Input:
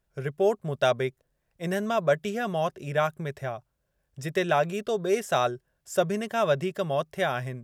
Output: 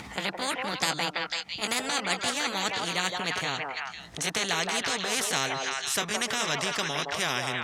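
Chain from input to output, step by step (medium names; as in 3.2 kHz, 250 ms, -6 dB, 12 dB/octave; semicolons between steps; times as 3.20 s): pitch bend over the whole clip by +5 st ending unshifted; high-pass 150 Hz 12 dB/octave; peaking EQ 560 Hz -10.5 dB 0.63 oct; upward compressor, threshold -50 dBFS; distance through air 73 m; repeats whose band climbs or falls 166 ms, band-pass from 670 Hz, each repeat 1.4 oct, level -3 dB; spectrum-flattening compressor 4:1; trim +3 dB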